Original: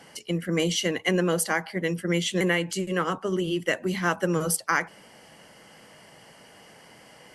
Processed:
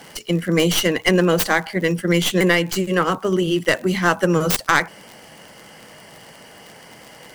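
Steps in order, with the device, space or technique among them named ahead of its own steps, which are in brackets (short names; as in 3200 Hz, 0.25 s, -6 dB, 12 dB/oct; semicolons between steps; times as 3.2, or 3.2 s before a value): record under a worn stylus (tracing distortion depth 0.21 ms; crackle 49/s -36 dBFS; white noise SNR 41 dB); gain +7.5 dB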